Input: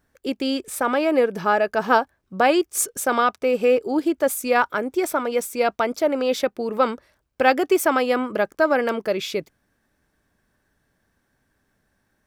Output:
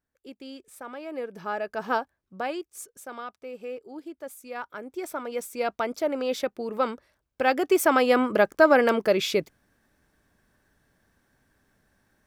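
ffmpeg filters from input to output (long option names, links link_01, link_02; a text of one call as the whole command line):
ffmpeg -i in.wav -af "volume=11.5dB,afade=type=in:start_time=1.02:duration=0.91:silence=0.334965,afade=type=out:start_time=1.93:duration=0.87:silence=0.316228,afade=type=in:start_time=4.5:duration=1.34:silence=0.237137,afade=type=in:start_time=7.46:duration=0.79:silence=0.421697" out.wav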